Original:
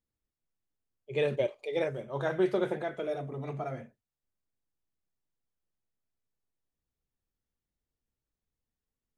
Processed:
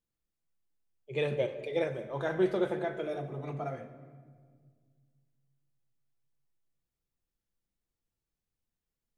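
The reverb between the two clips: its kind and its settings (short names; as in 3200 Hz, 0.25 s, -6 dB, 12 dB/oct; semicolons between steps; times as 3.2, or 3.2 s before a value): shoebox room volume 2500 m³, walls mixed, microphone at 0.79 m; gain -1.5 dB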